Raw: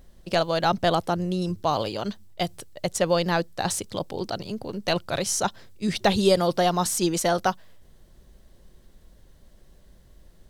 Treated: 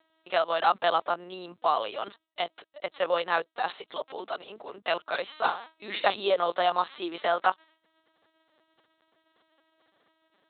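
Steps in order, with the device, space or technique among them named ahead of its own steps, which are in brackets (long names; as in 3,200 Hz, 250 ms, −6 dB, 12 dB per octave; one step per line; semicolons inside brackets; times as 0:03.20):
0:05.36–0:06.09: flutter between parallel walls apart 5.3 metres, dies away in 0.4 s
talking toy (linear-prediction vocoder at 8 kHz pitch kept; high-pass filter 620 Hz 12 dB per octave; parametric band 1,200 Hz +5 dB 0.42 octaves)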